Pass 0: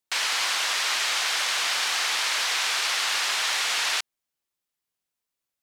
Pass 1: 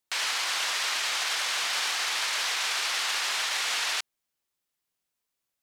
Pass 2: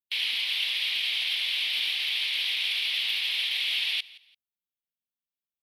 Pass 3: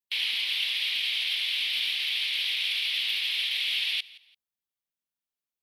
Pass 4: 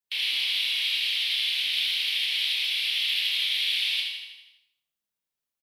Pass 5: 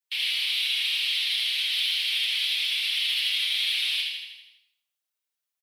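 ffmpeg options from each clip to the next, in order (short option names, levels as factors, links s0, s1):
-af "alimiter=limit=0.0841:level=0:latency=1:release=14,volume=1.19"
-af "afftdn=nr=17:nf=-45,firequalizer=gain_entry='entry(140,0);entry(230,7);entry(340,-13);entry(660,-20);entry(1400,-25);entry(2200,-2);entry(3300,4);entry(6800,-27);entry(12000,3)':delay=0.05:min_phase=1,aecho=1:1:170|340:0.0891|0.025,volume=1.41"
-af "adynamicequalizer=threshold=0.00316:dfrequency=730:dqfactor=0.97:tfrequency=730:tqfactor=0.97:attack=5:release=100:ratio=0.375:range=2.5:mode=cutabove:tftype=bell"
-filter_complex "[0:a]asplit=2[s0][s1];[s1]aecho=0:1:81|162|243|324|405|486|567:0.501|0.276|0.152|0.0834|0.0459|0.0252|0.0139[s2];[s0][s2]amix=inputs=2:normalize=0,acrossover=split=420|3000[s3][s4][s5];[s4]acompressor=threshold=0.00794:ratio=1.5[s6];[s3][s6][s5]amix=inputs=3:normalize=0,asplit=2[s7][s8];[s8]aecho=0:1:30|66|109.2|161|223.2:0.631|0.398|0.251|0.158|0.1[s9];[s7][s9]amix=inputs=2:normalize=0"
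-af "asoftclip=type=tanh:threshold=0.1,highpass=f=950:p=1,aecho=1:1:6.5:0.77"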